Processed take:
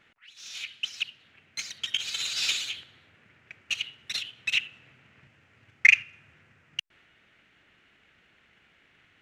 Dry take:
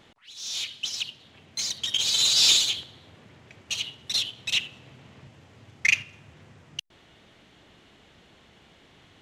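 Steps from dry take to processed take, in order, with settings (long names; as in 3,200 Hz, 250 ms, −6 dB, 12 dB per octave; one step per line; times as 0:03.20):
flat-topped bell 1,900 Hz +11 dB 1.3 octaves
transient designer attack +8 dB, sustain +2 dB
level −12.5 dB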